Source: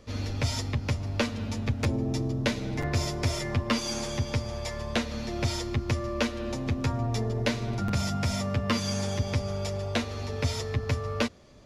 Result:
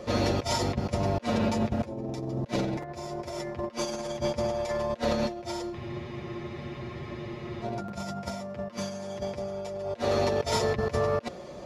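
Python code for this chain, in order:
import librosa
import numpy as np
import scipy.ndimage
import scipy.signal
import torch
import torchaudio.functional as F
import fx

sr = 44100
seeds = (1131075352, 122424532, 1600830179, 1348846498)

y = scipy.signal.sosfilt(scipy.signal.butter(2, 52.0, 'highpass', fs=sr, output='sos'), x)
y = fx.peak_eq(y, sr, hz=600.0, db=11.0, octaves=2.0)
y = y + 0.52 * np.pad(y, (int(5.6 * sr / 1000.0), 0))[:len(y)]
y = fx.over_compress(y, sr, threshold_db=-30.0, ratio=-0.5)
y = fx.spec_freeze(y, sr, seeds[0], at_s=5.75, hold_s=1.87)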